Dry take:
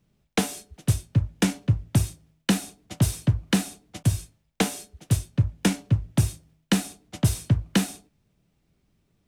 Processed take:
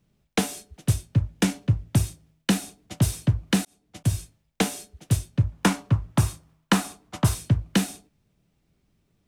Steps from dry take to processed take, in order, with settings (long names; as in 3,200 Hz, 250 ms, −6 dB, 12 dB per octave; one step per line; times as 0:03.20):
0:03.65–0:04.15: fade in
0:05.52–0:07.35: parametric band 1,100 Hz +12 dB 1 octave